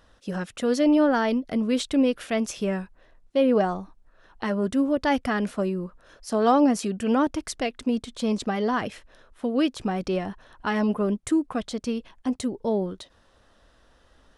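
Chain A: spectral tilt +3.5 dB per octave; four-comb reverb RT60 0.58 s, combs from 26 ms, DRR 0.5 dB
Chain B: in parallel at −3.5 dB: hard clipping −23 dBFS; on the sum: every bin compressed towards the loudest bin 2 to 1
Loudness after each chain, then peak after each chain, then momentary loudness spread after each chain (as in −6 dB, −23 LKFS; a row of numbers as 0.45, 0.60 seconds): −25.0, −26.5 LKFS; −4.0, −7.0 dBFS; 12, 13 LU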